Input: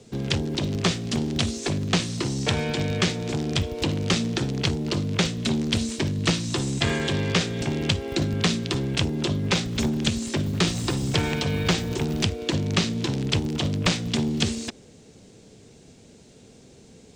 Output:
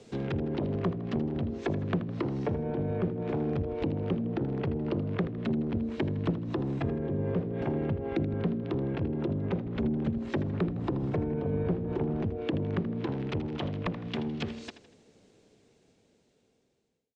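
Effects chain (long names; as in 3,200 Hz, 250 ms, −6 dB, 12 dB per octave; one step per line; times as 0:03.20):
fade-out on the ending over 5.00 s
bass and treble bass −7 dB, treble −4 dB
treble cut that deepens with the level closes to 380 Hz, closed at −23.5 dBFS
high-shelf EQ 5,600 Hz −4.5 dB
on a send: repeating echo 80 ms, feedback 43%, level −13 dB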